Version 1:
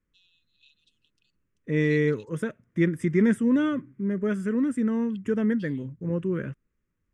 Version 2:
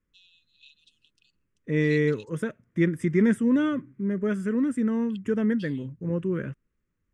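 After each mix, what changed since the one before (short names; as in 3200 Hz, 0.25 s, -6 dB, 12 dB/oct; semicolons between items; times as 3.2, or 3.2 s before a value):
first voice +6.0 dB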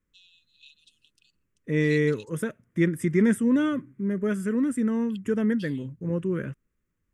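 master: remove air absorption 58 m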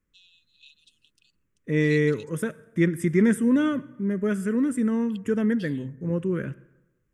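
reverb: on, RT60 1.0 s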